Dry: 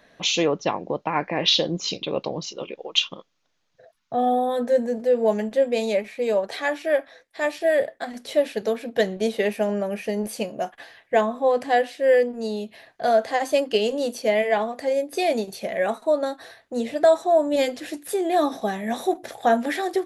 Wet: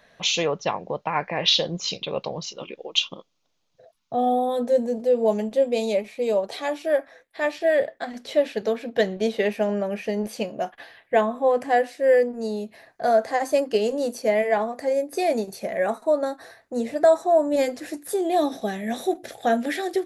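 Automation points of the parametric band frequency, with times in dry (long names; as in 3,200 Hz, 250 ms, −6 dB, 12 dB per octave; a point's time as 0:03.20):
parametric band −9 dB 0.69 octaves
0:02.54 300 Hz
0:02.95 1,700 Hz
0:06.79 1,700 Hz
0:07.52 10,000 Hz
0:10.50 10,000 Hz
0:11.88 3,200 Hz
0:18.02 3,200 Hz
0:18.55 1,000 Hz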